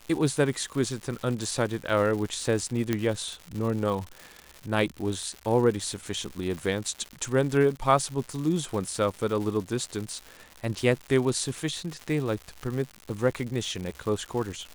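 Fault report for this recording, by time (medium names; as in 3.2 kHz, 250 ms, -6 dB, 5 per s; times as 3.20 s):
crackle 210 per s -33 dBFS
2.93 s: pop -12 dBFS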